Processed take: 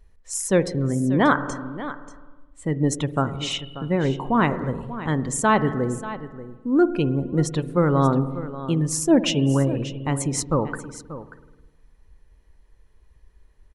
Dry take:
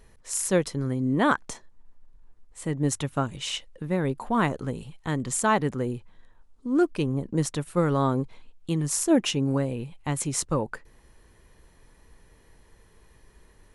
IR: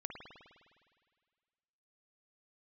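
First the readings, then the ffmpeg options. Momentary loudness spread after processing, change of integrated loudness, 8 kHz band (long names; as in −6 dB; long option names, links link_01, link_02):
14 LU, +4.0 dB, +1.0 dB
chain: -filter_complex "[0:a]acontrast=45,asplit=2[link_01][link_02];[1:a]atrim=start_sample=2205,lowpass=8100[link_03];[link_02][link_03]afir=irnorm=-1:irlink=0,volume=-2dB[link_04];[link_01][link_04]amix=inputs=2:normalize=0,afftdn=noise_reduction=14:noise_floor=-32,aecho=1:1:586:0.2,volume=-5dB"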